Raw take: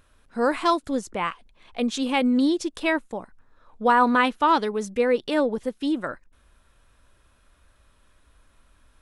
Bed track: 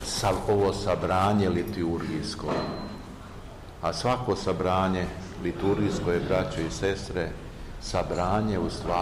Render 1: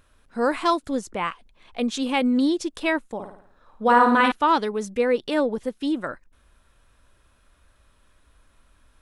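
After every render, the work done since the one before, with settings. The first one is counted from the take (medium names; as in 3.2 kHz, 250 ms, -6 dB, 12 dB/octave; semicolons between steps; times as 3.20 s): 3.14–4.32 s: flutter echo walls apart 9.3 m, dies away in 0.58 s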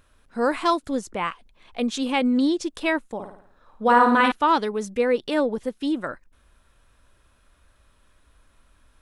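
2.12–2.63 s: low-pass 9.4 kHz 24 dB/octave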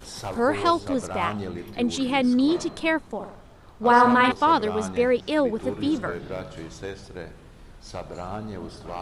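add bed track -8 dB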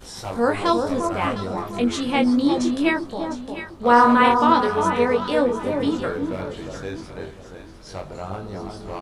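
doubling 21 ms -4.5 dB; echo whose repeats swap between lows and highs 353 ms, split 1.2 kHz, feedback 52%, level -4.5 dB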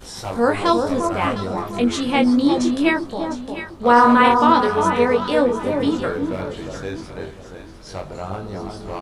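trim +2.5 dB; peak limiter -3 dBFS, peak gain reduction 2 dB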